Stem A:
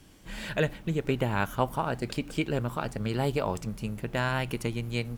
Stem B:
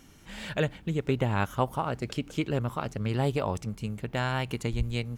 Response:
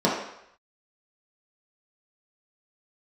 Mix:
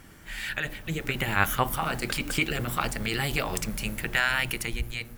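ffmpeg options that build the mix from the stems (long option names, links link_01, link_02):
-filter_complex "[0:a]alimiter=limit=-22dB:level=0:latency=1:release=11,highshelf=frequency=11000:gain=11.5,volume=0dB,asplit=2[link_01][link_02];[1:a]lowpass=frequency=1800:width_type=q:width=2.3,volume=-1,volume=2dB[link_03];[link_02]apad=whole_len=228294[link_04];[link_03][link_04]sidechaincompress=threshold=-34dB:ratio=8:attack=33:release=352[link_05];[link_01][link_05]amix=inputs=2:normalize=0,dynaudnorm=framelen=210:gausssize=9:maxgain=10dB"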